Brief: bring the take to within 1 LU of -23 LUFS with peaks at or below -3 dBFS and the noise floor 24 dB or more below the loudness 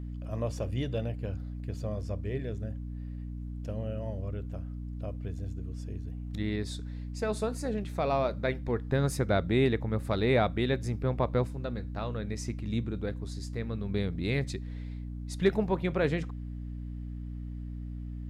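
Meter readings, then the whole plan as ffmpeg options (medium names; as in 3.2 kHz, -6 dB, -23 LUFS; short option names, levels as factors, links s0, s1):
hum 60 Hz; highest harmonic 300 Hz; hum level -36 dBFS; loudness -33.0 LUFS; peak level -13.5 dBFS; loudness target -23.0 LUFS
-> -af "bandreject=f=60:t=h:w=6,bandreject=f=120:t=h:w=6,bandreject=f=180:t=h:w=6,bandreject=f=240:t=h:w=6,bandreject=f=300:t=h:w=6"
-af "volume=3.16"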